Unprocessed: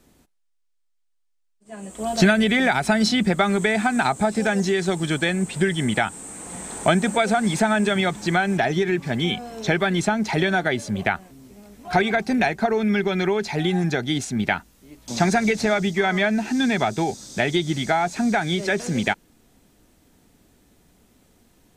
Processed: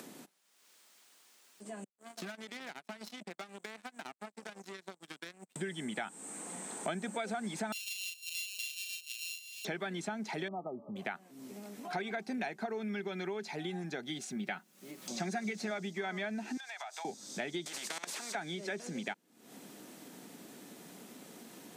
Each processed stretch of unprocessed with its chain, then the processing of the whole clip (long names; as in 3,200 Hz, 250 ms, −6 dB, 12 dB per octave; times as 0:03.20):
0:01.84–0:05.56: low-shelf EQ 140 Hz −5 dB + power curve on the samples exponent 3 + hard clipping −23 dBFS
0:07.72–0:09.65: samples sorted by size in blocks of 32 samples + elliptic high-pass filter 2,700 Hz, stop band 60 dB + double-tracking delay 36 ms −4.5 dB
0:10.48–0:10.96: linear-phase brick-wall low-pass 1,300 Hz + parametric band 300 Hz −4 dB 1.9 octaves
0:14.06–0:15.71: notch filter 940 Hz + comb filter 5.4 ms, depth 47% + bit-depth reduction 10 bits, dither none
0:16.57–0:17.05: Chebyshev high-pass filter 710 Hz, order 4 + downward compressor 10 to 1, threshold −30 dBFS
0:17.65–0:18.35: high-pass filter 480 Hz + output level in coarse steps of 21 dB + every bin compressed towards the loudest bin 4 to 1
whole clip: downward compressor 2 to 1, threshold −45 dBFS; high-pass filter 180 Hz 24 dB per octave; upward compression, threshold −39 dBFS; level −2 dB